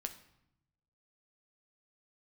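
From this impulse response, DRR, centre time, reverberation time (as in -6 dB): 6.0 dB, 9 ms, 0.80 s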